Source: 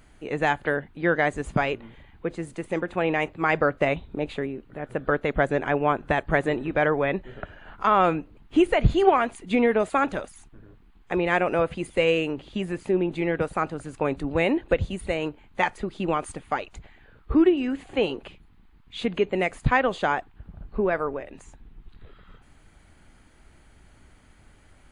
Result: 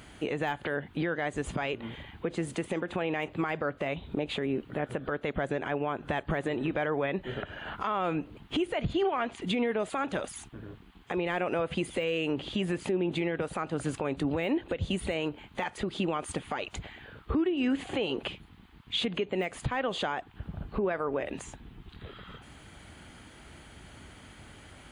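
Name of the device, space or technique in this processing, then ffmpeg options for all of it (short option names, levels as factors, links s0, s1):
broadcast voice chain: -filter_complex "[0:a]highpass=71,deesser=0.85,acompressor=threshold=0.0355:ratio=4,equalizer=f=3200:t=o:w=0.46:g=5.5,alimiter=level_in=1.5:limit=0.0631:level=0:latency=1:release=152,volume=0.668,asettb=1/sr,asplit=3[s0][s1][s2];[s0]atrim=end=8.934[s3];[s1]atrim=start=8.93:end=9.42,asetpts=PTS-STARTPTS,afade=t=in:d=0.004:c=qsin,afade=t=out:st=0.486:d=0.004:c=qsin,lowpass=5100[s4];[s2]atrim=start=9.416[s5];[s3][s4]acrossfade=d=0.004:c1=hsin:c2=qsin[s6];[s6][s5]acrossfade=d=0.004:c1=qsin:c2=hsin,volume=2.24"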